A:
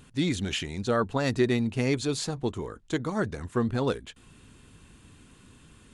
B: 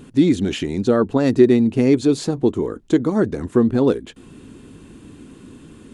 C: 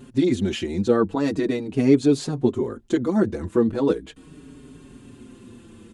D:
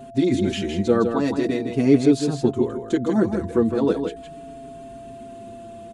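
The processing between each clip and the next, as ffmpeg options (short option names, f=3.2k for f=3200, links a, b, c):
-filter_complex "[0:a]asplit=2[a][b];[b]acompressor=threshold=-34dB:ratio=6,volume=0.5dB[c];[a][c]amix=inputs=2:normalize=0,equalizer=f=310:w=0.72:g=14,volume=-2dB"
-filter_complex "[0:a]asplit=2[a][b];[b]adelay=5.2,afreqshift=-0.39[c];[a][c]amix=inputs=2:normalize=1"
-af "aeval=exprs='val(0)+0.0112*sin(2*PI*680*n/s)':c=same,aecho=1:1:160:0.473"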